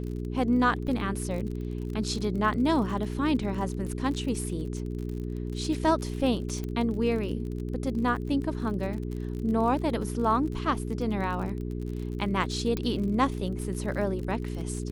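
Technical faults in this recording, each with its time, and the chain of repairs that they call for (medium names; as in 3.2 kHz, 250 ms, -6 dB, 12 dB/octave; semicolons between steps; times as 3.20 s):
crackle 40 per s -35 dBFS
hum 60 Hz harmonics 7 -33 dBFS
0.87 s: dropout 4 ms
6.64 s: pop -22 dBFS
12.77 s: pop -17 dBFS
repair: de-click; de-hum 60 Hz, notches 7; interpolate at 0.87 s, 4 ms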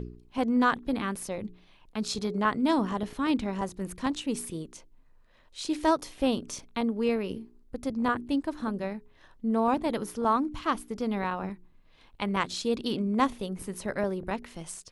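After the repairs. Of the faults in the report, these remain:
nothing left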